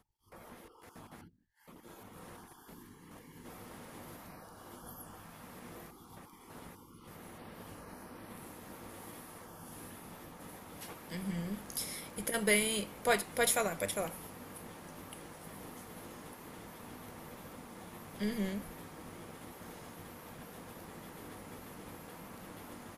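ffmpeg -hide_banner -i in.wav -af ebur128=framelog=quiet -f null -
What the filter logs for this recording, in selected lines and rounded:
Integrated loudness:
  I:         -39.8 LUFS
  Threshold: -50.9 LUFS
Loudness range:
  LRA:        18.4 LU
  Threshold: -60.4 LUFS
  LRA low:   -51.6 LUFS
  LRA high:  -33.1 LUFS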